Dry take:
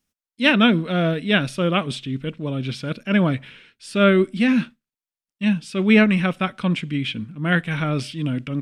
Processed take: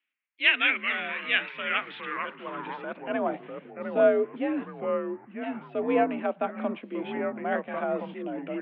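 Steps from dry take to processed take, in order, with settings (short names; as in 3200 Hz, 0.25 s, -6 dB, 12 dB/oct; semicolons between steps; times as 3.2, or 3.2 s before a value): in parallel at +2.5 dB: compressor, threshold -27 dBFS, peak gain reduction 16 dB; 1.72–2.54 on the sum: requantised 6-bit, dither none; mistuned SSB +51 Hz 150–3300 Hz; echoes that change speed 0.112 s, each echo -3 st, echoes 3, each echo -6 dB; band-pass sweep 2300 Hz -> 670 Hz, 1.5–3.43; gain -1.5 dB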